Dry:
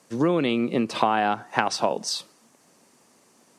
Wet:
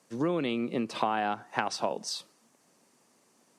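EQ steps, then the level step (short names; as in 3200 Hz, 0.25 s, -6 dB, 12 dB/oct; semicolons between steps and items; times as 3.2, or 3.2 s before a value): HPF 83 Hz; -7.0 dB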